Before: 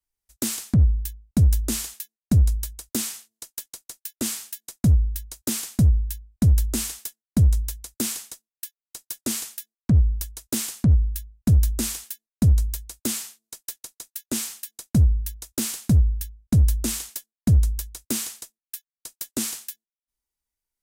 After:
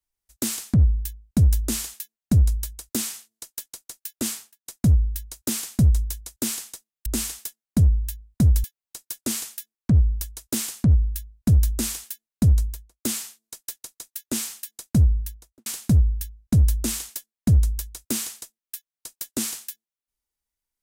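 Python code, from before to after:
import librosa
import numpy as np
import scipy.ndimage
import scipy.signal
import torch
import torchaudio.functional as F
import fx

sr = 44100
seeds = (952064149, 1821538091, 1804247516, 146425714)

y = fx.studio_fade_out(x, sr, start_s=4.27, length_s=0.39)
y = fx.studio_fade_out(y, sr, start_s=12.55, length_s=0.49)
y = fx.studio_fade_out(y, sr, start_s=15.15, length_s=0.51)
y = fx.edit(y, sr, fx.swap(start_s=5.83, length_s=0.83, other_s=7.41, other_length_s=1.23), tone=tone)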